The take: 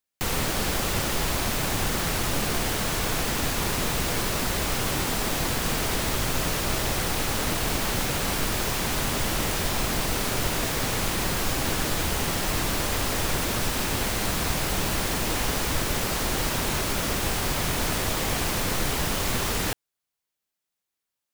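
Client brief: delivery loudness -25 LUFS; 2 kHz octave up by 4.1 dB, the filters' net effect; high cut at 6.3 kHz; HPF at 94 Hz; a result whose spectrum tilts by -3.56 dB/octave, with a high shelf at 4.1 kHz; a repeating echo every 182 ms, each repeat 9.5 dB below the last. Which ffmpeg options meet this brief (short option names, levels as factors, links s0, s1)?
-af "highpass=94,lowpass=6300,equalizer=f=2000:t=o:g=6,highshelf=f=4100:g=-4,aecho=1:1:182|364|546|728:0.335|0.111|0.0365|0.012,volume=1.12"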